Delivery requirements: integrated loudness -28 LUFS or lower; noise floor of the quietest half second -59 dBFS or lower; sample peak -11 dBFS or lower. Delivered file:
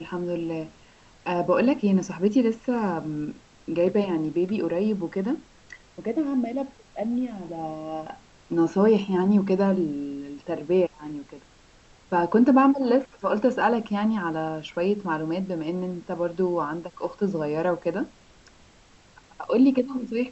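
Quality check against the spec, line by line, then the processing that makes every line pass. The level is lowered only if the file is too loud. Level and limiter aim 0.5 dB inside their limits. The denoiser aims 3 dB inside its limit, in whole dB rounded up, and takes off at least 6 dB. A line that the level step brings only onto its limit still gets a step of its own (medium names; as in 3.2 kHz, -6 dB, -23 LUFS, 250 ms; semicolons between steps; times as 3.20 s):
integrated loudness -25.0 LUFS: fail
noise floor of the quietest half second -55 dBFS: fail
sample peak -9.0 dBFS: fail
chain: noise reduction 6 dB, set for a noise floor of -55 dBFS; trim -3.5 dB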